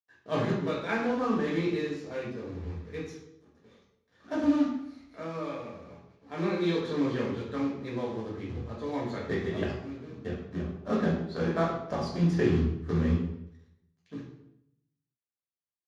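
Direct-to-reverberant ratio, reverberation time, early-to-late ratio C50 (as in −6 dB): −5.5 dB, 0.75 s, 2.5 dB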